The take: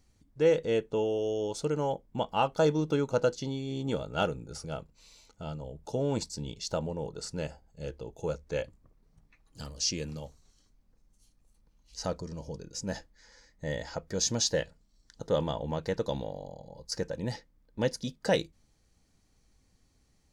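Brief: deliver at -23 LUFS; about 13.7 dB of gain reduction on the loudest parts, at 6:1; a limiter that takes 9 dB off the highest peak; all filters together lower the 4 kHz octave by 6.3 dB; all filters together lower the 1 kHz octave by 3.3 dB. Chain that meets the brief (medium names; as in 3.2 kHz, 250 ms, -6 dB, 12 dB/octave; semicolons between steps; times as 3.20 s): peaking EQ 1 kHz -4 dB; peaking EQ 4 kHz -8.5 dB; compression 6:1, threshold -36 dBFS; trim +21 dB; peak limiter -12 dBFS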